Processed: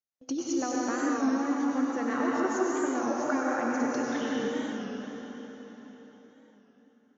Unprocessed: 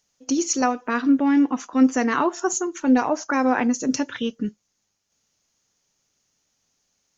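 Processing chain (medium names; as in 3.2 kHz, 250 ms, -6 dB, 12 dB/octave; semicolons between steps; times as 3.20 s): high-pass 87 Hz; compression, threshold -24 dBFS, peak gain reduction 12 dB; graphic EQ with 31 bands 200 Hz -6 dB, 2.5 kHz -5 dB, 6.3 kHz +3 dB; gate with hold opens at -44 dBFS; distance through air 160 m; band-stop 960 Hz, Q 15; plate-style reverb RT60 4.5 s, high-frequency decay 0.9×, pre-delay 85 ms, DRR -5 dB; warped record 33 1/3 rpm, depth 100 cents; trim -4 dB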